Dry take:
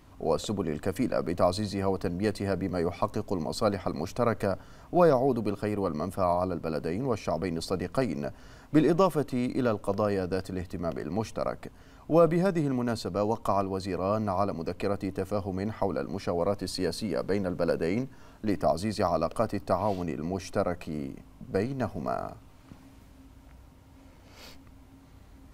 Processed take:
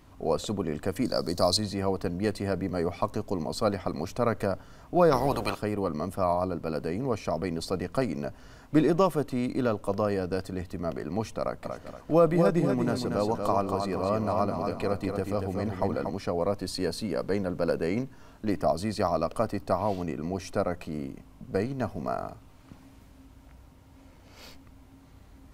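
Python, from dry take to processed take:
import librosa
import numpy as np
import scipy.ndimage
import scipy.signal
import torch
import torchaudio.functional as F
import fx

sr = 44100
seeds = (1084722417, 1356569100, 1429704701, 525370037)

y = fx.high_shelf_res(x, sr, hz=3500.0, db=9.5, q=3.0, at=(1.05, 1.57))
y = fx.spec_clip(y, sr, under_db=22, at=(5.11, 5.58), fade=0.02)
y = fx.echo_feedback(y, sr, ms=236, feedback_pct=37, wet_db=-5.5, at=(11.64, 16.09), fade=0.02)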